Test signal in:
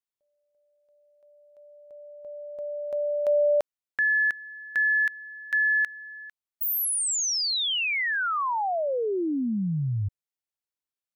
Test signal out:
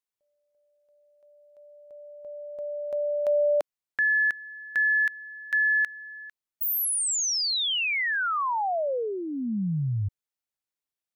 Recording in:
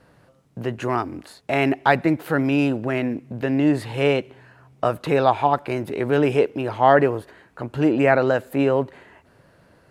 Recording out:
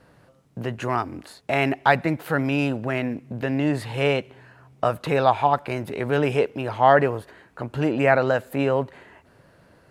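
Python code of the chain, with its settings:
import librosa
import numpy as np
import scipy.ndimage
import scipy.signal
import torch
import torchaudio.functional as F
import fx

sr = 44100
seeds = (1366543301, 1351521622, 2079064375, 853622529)

y = fx.dynamic_eq(x, sr, hz=330.0, q=1.8, threshold_db=-34.0, ratio=8.0, max_db=-6)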